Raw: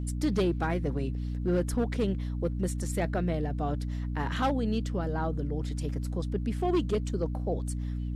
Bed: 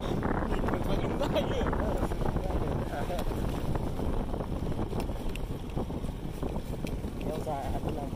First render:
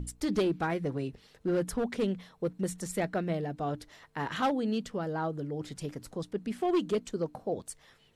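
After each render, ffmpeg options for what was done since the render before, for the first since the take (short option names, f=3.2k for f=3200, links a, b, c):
-af "bandreject=f=60:t=h:w=6,bandreject=f=120:t=h:w=6,bandreject=f=180:t=h:w=6,bandreject=f=240:t=h:w=6,bandreject=f=300:t=h:w=6"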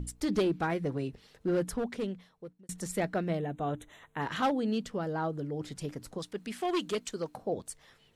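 -filter_complex "[0:a]asettb=1/sr,asplit=3[a][b][c];[a]atrim=end=3.394[d];[b]atrim=start=3.39:end=4.22,asetpts=PTS-STARTPTS,afade=t=in:d=0.004:c=qsin,afade=t=out:st=0.826:d=0.004:c=qsin,asuperstop=centerf=4900:order=12:qfactor=2.4[e];[c]atrim=start=4.216[f];[d][e]acrossfade=d=0.004:c1=hsin:c2=qsin[g];[g][f]acrossfade=d=0.004:c1=qsin:c2=hsin,asettb=1/sr,asplit=3[h][i][j];[h]atrim=end=6.184[k];[i]atrim=start=6.18:end=7.37,asetpts=PTS-STARTPTS,afade=t=in:d=0.004:c=qsin,afade=t=out:st=1.186:d=0.004:c=qsin,tiltshelf=f=830:g=-6[l];[j]atrim=start=7.366[m];[k][l]acrossfade=d=0.004:c1=hsin:c2=qsin[n];[n][m]acrossfade=d=0.004:c1=qsin:c2=hsin,asplit=2[o][p];[o]atrim=end=2.69,asetpts=PTS-STARTPTS,afade=t=out:st=1.58:d=1.11[q];[p]atrim=start=2.69,asetpts=PTS-STARTPTS,afade=t=in:d=0.004:c=hsin[r];[q][r]concat=n=2:v=0:a=1"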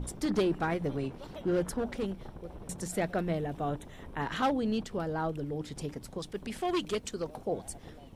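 -filter_complex "[1:a]volume=-16dB[a];[0:a][a]amix=inputs=2:normalize=0"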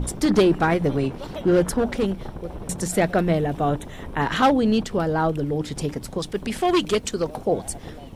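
-af "volume=11dB"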